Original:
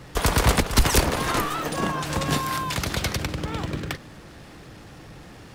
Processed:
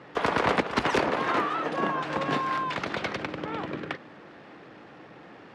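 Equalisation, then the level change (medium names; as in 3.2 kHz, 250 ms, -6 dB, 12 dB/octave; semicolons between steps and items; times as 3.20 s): band-pass 260–2400 Hz; 0.0 dB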